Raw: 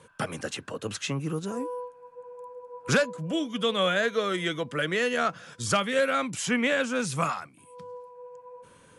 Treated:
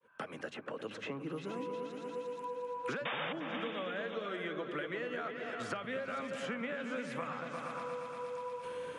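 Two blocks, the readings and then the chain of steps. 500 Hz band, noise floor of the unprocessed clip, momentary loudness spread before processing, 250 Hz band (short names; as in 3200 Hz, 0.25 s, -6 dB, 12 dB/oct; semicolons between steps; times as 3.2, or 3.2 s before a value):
-9.5 dB, -56 dBFS, 20 LU, -11.0 dB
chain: opening faded in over 2.72 s; three-band isolator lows -16 dB, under 200 Hz, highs -19 dB, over 3100 Hz; compressor, threshold -30 dBFS, peak gain reduction 10.5 dB; painted sound noise, 3.05–3.33, 440–3700 Hz -27 dBFS; repeats that get brighter 0.117 s, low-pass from 200 Hz, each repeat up 2 oct, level -3 dB; three-band squash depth 100%; gain -7 dB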